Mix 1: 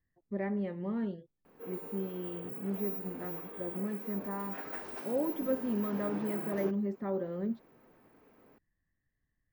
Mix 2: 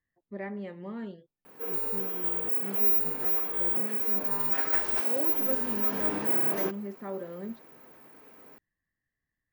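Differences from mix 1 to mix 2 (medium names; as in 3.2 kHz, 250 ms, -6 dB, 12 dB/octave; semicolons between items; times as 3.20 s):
background +8.5 dB; master: add tilt EQ +2 dB/octave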